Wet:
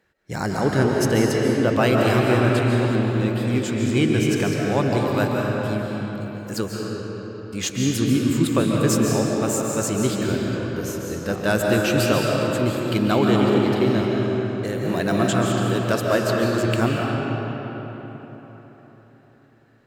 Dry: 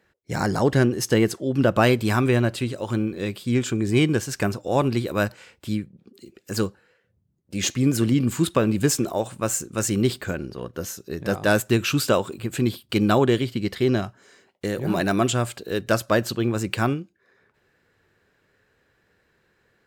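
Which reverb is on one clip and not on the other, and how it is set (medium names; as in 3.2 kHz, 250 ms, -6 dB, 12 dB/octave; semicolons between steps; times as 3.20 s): algorithmic reverb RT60 4.3 s, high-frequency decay 0.6×, pre-delay 105 ms, DRR -2 dB; trim -2 dB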